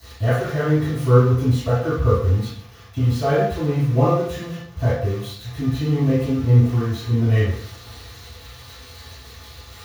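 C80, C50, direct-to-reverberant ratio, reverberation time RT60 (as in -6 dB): 4.5 dB, -1.0 dB, -20.0 dB, 0.65 s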